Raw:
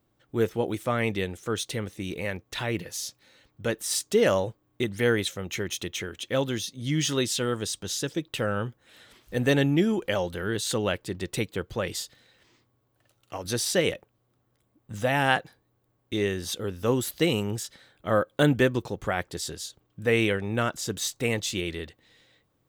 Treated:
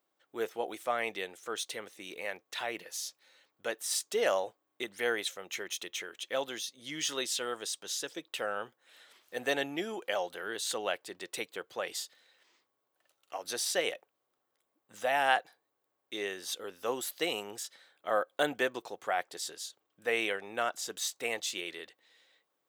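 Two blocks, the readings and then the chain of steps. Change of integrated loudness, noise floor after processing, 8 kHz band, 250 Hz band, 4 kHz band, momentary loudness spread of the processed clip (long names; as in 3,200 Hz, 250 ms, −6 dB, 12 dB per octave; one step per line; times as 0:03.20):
−7.0 dB, −82 dBFS, −4.5 dB, −16.0 dB, −4.5 dB, 11 LU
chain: high-pass filter 530 Hz 12 dB per octave
dynamic equaliser 720 Hz, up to +7 dB, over −50 dBFS, Q 5.5
level −4.5 dB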